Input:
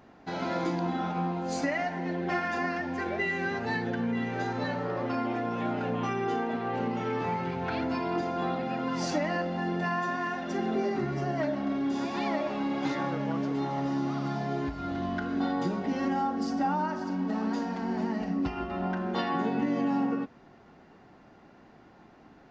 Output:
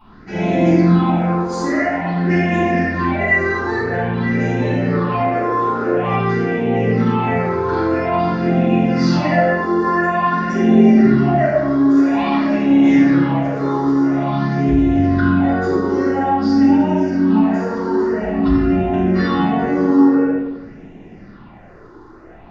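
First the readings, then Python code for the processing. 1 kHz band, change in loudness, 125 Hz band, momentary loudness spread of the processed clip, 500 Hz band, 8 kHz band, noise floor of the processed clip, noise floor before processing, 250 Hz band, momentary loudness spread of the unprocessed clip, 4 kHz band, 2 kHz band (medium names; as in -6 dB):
+11.5 dB, +14.5 dB, +16.5 dB, 6 LU, +14.0 dB, no reading, -41 dBFS, -55 dBFS, +16.0 dB, 3 LU, +8.0 dB, +12.5 dB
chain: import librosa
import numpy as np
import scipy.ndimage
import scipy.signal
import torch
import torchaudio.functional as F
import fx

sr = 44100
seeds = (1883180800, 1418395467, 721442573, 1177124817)

y = fx.high_shelf(x, sr, hz=5400.0, db=-7.0)
y = fx.phaser_stages(y, sr, stages=6, low_hz=170.0, high_hz=1300.0, hz=0.49, feedback_pct=25)
y = fx.room_shoebox(y, sr, seeds[0], volume_m3=530.0, walls='mixed', distance_m=9.4)
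y = y * librosa.db_to_amplitude(-1.0)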